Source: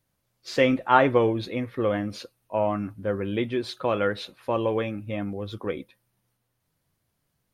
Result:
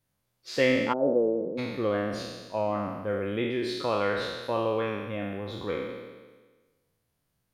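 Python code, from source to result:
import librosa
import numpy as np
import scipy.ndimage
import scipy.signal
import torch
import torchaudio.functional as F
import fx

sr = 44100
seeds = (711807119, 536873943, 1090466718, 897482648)

y = fx.spec_trails(x, sr, decay_s=1.38)
y = fx.ellip_bandpass(y, sr, low_hz=160.0, high_hz=570.0, order=3, stop_db=70, at=(0.92, 1.57), fade=0.02)
y = F.gain(torch.from_numpy(y), -5.0).numpy()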